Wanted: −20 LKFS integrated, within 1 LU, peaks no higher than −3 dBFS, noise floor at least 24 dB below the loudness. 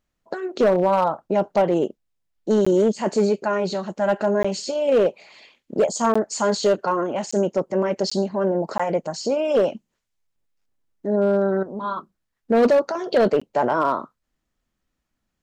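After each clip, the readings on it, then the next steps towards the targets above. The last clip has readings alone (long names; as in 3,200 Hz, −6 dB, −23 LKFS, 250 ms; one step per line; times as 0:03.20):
share of clipped samples 1.2%; peaks flattened at −12.0 dBFS; number of dropouts 7; longest dropout 15 ms; integrated loudness −21.5 LKFS; sample peak −12.0 dBFS; target loudness −20.0 LKFS
→ clipped peaks rebuilt −12 dBFS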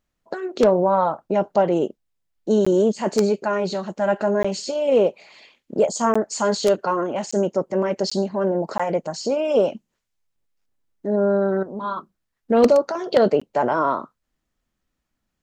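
share of clipped samples 0.0%; number of dropouts 7; longest dropout 15 ms
→ repair the gap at 0:02.65/0:04.43/0:06.14/0:07.31/0:08.10/0:08.78/0:13.40, 15 ms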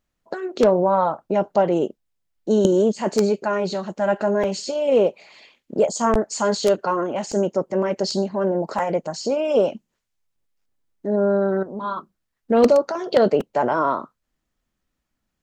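number of dropouts 0; integrated loudness −21.0 LKFS; sample peak −3.0 dBFS; target loudness −20.0 LKFS
→ level +1 dB
brickwall limiter −3 dBFS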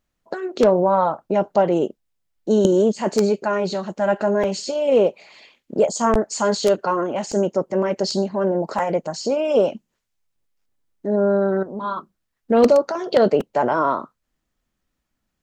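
integrated loudness −20.0 LKFS; sample peak −3.0 dBFS; background noise floor −77 dBFS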